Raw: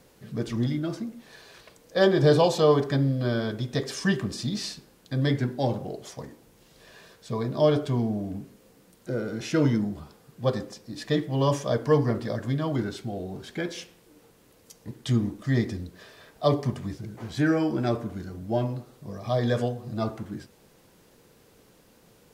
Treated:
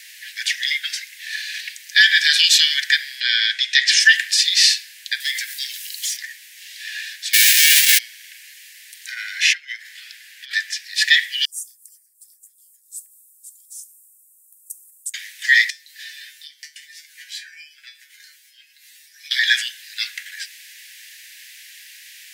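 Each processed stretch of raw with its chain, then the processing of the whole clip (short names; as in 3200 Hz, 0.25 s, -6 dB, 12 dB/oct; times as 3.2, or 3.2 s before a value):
3.2–4 LPF 5000 Hz + tilt +1.5 dB/oct
5.2–6.17 pre-emphasis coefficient 0.97 + sample leveller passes 3 + compressor, threshold -42 dBFS
7.33–7.97 spectral whitening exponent 0.1 + comb 4.4 ms, depth 49%
9.11–10.95 high shelf 3500 Hz -8.5 dB + notches 60/120 Hz + negative-ratio compressor -28 dBFS, ratio -0.5
11.45–15.14 Chebyshev band-stop 120–8200 Hz, order 4 + compressor, threshold -37 dBFS + three-band expander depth 40%
15.7–19.31 high shelf 4800 Hz +6.5 dB + compressor, threshold -38 dBFS + resonator 150 Hz, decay 0.21 s, mix 90%
whole clip: steep high-pass 1700 Hz 96 dB/oct; high shelf 2600 Hz -9 dB; maximiser +29.5 dB; gain -1 dB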